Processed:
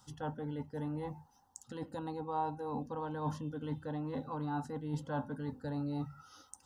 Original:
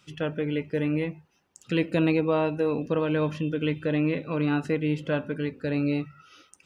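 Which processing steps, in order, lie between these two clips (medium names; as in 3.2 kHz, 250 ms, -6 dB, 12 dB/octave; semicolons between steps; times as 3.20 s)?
static phaser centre 650 Hz, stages 6; reverse; compression, threshold -35 dBFS, peak gain reduction 12.5 dB; reverse; FFT filter 100 Hz 0 dB, 150 Hz +6 dB, 240 Hz +3 dB, 360 Hz -20 dB, 780 Hz +11 dB, 1.2 kHz -8 dB, 2.2 kHz -9 dB, 7.4 kHz -2 dB; trim +5.5 dB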